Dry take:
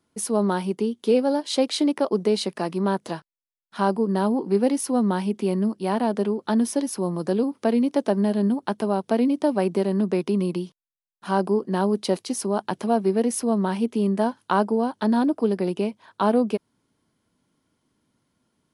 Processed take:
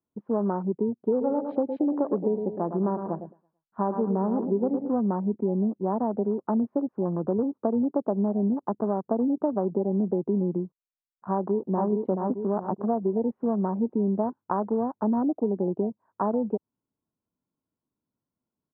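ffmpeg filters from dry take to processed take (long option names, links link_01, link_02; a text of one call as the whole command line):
ffmpeg -i in.wav -filter_complex "[0:a]asplit=3[link_01][link_02][link_03];[link_01]afade=type=out:start_time=1.2:duration=0.02[link_04];[link_02]aecho=1:1:110|220|330|440:0.355|0.142|0.0568|0.0227,afade=type=in:start_time=1.2:duration=0.02,afade=type=out:start_time=4.88:duration=0.02[link_05];[link_03]afade=type=in:start_time=4.88:duration=0.02[link_06];[link_04][link_05][link_06]amix=inputs=3:normalize=0,asplit=2[link_07][link_08];[link_08]afade=type=in:start_time=11.34:duration=0.01,afade=type=out:start_time=11.88:duration=0.01,aecho=0:1:430|860|1290|1720|2150:0.668344|0.267338|0.106935|0.042774|0.0171096[link_09];[link_07][link_09]amix=inputs=2:normalize=0,acompressor=threshold=-21dB:ratio=5,afwtdn=0.0282,lowpass=frequency=1200:width=0.5412,lowpass=frequency=1200:width=1.3066" out.wav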